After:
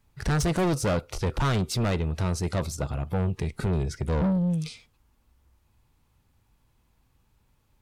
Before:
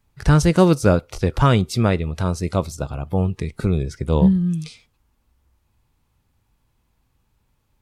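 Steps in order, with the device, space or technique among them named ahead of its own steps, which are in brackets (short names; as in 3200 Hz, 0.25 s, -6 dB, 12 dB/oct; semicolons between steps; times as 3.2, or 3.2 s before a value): saturation between pre-emphasis and de-emphasis (high shelf 9400 Hz +6.5 dB; soft clip -21.5 dBFS, distortion -6 dB; high shelf 9400 Hz -6.5 dB)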